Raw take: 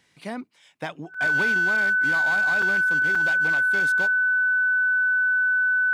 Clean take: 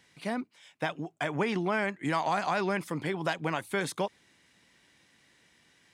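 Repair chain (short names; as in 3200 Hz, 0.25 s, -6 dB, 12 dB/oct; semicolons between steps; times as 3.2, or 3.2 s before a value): clip repair -18 dBFS; notch 1500 Hz, Q 30; interpolate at 1.14/2.62/3.15, 4.4 ms; gain correction +3 dB, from 1.52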